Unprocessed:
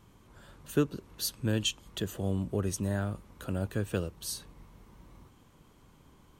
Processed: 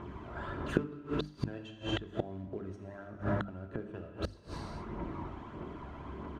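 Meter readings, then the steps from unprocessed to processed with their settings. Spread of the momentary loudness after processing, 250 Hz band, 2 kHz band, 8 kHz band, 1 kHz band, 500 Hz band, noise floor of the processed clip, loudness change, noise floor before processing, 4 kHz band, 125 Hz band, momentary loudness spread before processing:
10 LU, -3.5 dB, -1.0 dB, under -20 dB, +4.0 dB, -3.0 dB, -51 dBFS, -6.0 dB, -60 dBFS, -9.0 dB, -5.0 dB, 7 LU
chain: high-pass 160 Hz 6 dB/octave; comb 3 ms, depth 31%; short-mantissa float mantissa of 2-bit; phaser 1.6 Hz, delay 1.6 ms, feedback 46%; gated-style reverb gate 500 ms falling, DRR 4 dB; inverted gate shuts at -27 dBFS, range -26 dB; low-pass 1.6 kHz 12 dB/octave; hum notches 50/100/150/200/250/300 Hz; trim +15.5 dB

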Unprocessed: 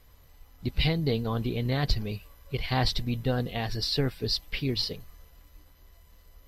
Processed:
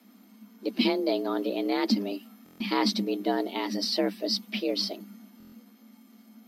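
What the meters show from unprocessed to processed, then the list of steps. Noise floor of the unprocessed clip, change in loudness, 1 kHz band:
-56 dBFS, +1.0 dB, +2.5 dB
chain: frequency shift +190 Hz; buffer glitch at 2.44/5.38 s, samples 1024, times 6

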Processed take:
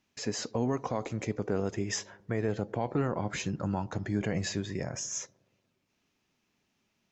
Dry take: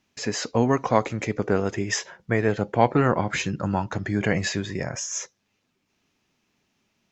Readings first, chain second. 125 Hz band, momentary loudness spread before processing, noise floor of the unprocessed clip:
-7.0 dB, 8 LU, -74 dBFS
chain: dynamic bell 1.9 kHz, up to -6 dB, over -39 dBFS, Q 0.7; peak limiter -14 dBFS, peak gain reduction 9 dB; feedback echo behind a low-pass 119 ms, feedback 59%, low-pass 990 Hz, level -23 dB; trim -5 dB

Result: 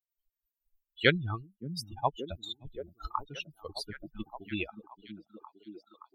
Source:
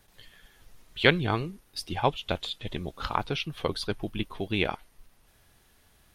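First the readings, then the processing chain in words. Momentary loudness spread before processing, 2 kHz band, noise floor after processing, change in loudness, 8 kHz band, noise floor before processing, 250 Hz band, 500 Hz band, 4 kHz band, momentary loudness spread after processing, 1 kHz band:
13 LU, -4.0 dB, under -85 dBFS, -5.0 dB, -4.5 dB, -63 dBFS, -6.0 dB, -5.5 dB, -5.5 dB, 24 LU, -5.5 dB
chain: expander on every frequency bin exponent 3; repeats whose band climbs or falls 573 ms, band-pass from 190 Hz, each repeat 0.7 oct, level -6.5 dB

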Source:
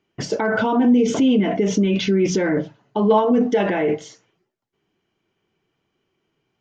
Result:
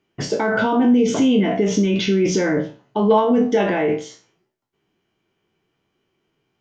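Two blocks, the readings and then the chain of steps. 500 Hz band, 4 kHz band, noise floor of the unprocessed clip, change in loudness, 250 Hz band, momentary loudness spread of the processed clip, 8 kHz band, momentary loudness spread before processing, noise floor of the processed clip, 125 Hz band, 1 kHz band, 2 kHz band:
+1.0 dB, +2.0 dB, -76 dBFS, +0.5 dB, +0.5 dB, 7 LU, no reading, 8 LU, -73 dBFS, +0.5 dB, +1.0 dB, +1.5 dB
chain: spectral sustain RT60 0.34 s

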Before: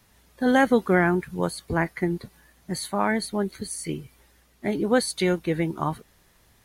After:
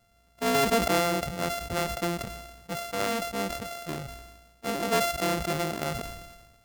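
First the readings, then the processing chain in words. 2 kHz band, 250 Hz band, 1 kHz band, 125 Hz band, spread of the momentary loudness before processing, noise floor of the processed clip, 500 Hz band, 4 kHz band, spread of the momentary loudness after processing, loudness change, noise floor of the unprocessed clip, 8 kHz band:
-4.5 dB, -8.0 dB, -1.0 dB, -5.5 dB, 13 LU, -63 dBFS, -3.5 dB, +2.5 dB, 14 LU, -3.5 dB, -61 dBFS, +0.5 dB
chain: sorted samples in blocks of 64 samples; decay stretcher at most 45 dB/s; trim -5.5 dB

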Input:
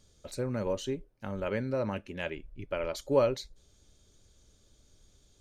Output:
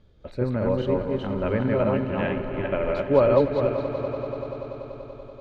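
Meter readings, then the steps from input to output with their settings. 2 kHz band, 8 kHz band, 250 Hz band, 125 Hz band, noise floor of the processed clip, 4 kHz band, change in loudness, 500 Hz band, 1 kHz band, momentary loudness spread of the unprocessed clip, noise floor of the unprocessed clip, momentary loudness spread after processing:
+7.0 dB, under -15 dB, +11.0 dB, +11.0 dB, -47 dBFS, +0.5 dB, +8.5 dB, +9.5 dB, +9.5 dB, 13 LU, -65 dBFS, 16 LU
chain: backward echo that repeats 205 ms, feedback 47%, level -1 dB; distance through air 440 m; echo with a slow build-up 96 ms, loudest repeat 5, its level -16.5 dB; trim +7.5 dB

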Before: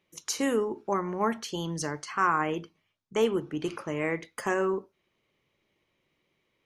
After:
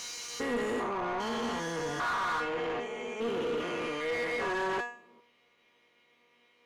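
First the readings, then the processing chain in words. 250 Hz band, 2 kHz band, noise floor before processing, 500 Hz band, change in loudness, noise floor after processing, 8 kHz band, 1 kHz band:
-5.5 dB, +0.5 dB, -77 dBFS, -3.0 dB, -3.0 dB, -68 dBFS, -5.5 dB, -2.5 dB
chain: spectrogram pixelated in time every 400 ms; feedback comb 240 Hz, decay 0.4 s, harmonics all, mix 90%; overdrive pedal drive 26 dB, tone 2.6 kHz, clips at -31.5 dBFS; trim +7.5 dB

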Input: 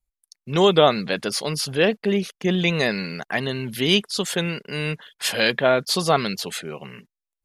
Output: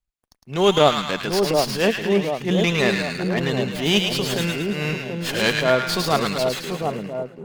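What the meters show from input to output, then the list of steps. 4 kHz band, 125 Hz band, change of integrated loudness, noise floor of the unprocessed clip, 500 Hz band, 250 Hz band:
+0.5 dB, +2.0 dB, +1.0 dB, under -85 dBFS, +1.0 dB, +1.5 dB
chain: transient shaper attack -10 dB, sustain -6 dB; two-band feedback delay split 980 Hz, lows 735 ms, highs 108 ms, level -3.5 dB; sliding maximum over 3 samples; trim +2 dB

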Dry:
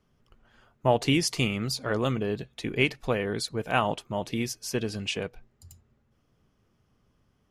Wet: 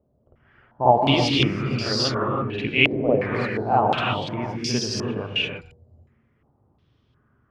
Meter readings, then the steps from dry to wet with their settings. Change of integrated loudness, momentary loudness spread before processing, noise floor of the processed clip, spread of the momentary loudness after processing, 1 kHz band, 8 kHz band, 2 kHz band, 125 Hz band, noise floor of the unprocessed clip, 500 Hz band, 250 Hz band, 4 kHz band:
+6.5 dB, 8 LU, -66 dBFS, 9 LU, +10.0 dB, 0.0 dB, +6.5 dB, +5.5 dB, -70 dBFS, +5.5 dB, +5.0 dB, +8.0 dB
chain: high-pass 81 Hz; bass shelf 240 Hz +11.5 dB; de-hum 160.2 Hz, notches 8; harmonic-percussive split percussive +7 dB; peaking EQ 180 Hz -4.5 dB 0.32 oct; reverse echo 50 ms -7 dB; gated-style reverb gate 360 ms rising, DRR -1 dB; step-sequenced low-pass 2.8 Hz 620–5000 Hz; trim -8 dB

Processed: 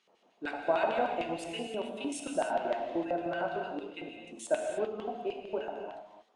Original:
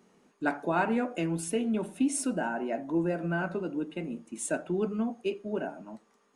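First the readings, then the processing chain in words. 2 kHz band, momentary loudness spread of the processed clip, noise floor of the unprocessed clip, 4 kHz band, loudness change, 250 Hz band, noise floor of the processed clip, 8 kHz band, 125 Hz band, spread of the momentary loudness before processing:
-3.5 dB, 13 LU, -68 dBFS, +3.0 dB, -3.0 dB, -9.0 dB, -68 dBFS, -9.0 dB, -14.5 dB, 8 LU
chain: LFO band-pass square 6.6 Hz 690–3300 Hz; gated-style reverb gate 330 ms flat, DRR 2 dB; trim +5.5 dB

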